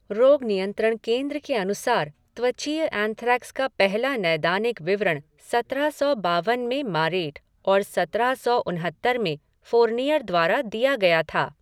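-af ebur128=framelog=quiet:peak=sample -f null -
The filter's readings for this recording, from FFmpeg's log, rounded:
Integrated loudness:
  I:         -23.4 LUFS
  Threshold: -33.5 LUFS
Loudness range:
  LRA:         1.8 LU
  Threshold: -44.0 LUFS
  LRA low:   -24.7 LUFS
  LRA high:  -22.9 LUFS
Sample peak:
  Peak:       -5.8 dBFS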